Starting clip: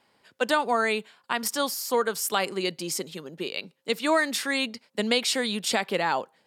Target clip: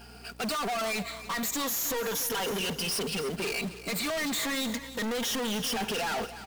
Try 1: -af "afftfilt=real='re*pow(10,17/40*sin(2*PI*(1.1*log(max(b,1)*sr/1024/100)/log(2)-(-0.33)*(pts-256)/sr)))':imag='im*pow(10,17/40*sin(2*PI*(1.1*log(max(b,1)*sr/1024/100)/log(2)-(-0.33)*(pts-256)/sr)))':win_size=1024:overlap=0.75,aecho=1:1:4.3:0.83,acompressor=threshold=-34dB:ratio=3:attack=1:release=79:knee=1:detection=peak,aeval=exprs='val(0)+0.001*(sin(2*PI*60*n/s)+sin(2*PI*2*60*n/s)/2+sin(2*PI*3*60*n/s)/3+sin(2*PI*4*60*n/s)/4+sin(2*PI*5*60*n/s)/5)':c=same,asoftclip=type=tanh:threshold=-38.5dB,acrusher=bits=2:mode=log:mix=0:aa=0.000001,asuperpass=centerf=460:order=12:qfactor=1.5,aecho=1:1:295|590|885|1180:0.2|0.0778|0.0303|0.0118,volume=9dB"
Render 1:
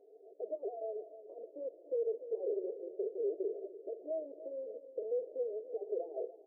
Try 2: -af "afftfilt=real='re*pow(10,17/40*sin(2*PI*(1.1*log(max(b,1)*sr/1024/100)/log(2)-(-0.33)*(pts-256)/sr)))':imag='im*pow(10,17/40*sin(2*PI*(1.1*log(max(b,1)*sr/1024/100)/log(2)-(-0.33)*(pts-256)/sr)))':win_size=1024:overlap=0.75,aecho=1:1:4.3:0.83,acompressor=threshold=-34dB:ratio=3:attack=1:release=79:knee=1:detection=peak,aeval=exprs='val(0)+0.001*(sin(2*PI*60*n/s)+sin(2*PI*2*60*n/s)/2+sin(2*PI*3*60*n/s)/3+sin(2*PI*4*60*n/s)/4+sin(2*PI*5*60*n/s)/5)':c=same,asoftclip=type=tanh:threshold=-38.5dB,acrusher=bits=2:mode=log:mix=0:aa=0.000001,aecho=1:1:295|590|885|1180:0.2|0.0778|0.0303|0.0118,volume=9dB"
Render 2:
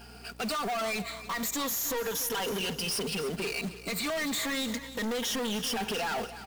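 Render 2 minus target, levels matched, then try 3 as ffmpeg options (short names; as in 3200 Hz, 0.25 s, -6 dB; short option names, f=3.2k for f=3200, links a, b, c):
compressor: peak gain reduction +6.5 dB
-af "afftfilt=real='re*pow(10,17/40*sin(2*PI*(1.1*log(max(b,1)*sr/1024/100)/log(2)-(-0.33)*(pts-256)/sr)))':imag='im*pow(10,17/40*sin(2*PI*(1.1*log(max(b,1)*sr/1024/100)/log(2)-(-0.33)*(pts-256)/sr)))':win_size=1024:overlap=0.75,aecho=1:1:4.3:0.83,acompressor=threshold=-24.5dB:ratio=3:attack=1:release=79:knee=1:detection=peak,aeval=exprs='val(0)+0.001*(sin(2*PI*60*n/s)+sin(2*PI*2*60*n/s)/2+sin(2*PI*3*60*n/s)/3+sin(2*PI*4*60*n/s)/4+sin(2*PI*5*60*n/s)/5)':c=same,asoftclip=type=tanh:threshold=-38.5dB,acrusher=bits=2:mode=log:mix=0:aa=0.000001,aecho=1:1:295|590|885|1180:0.2|0.0778|0.0303|0.0118,volume=9dB"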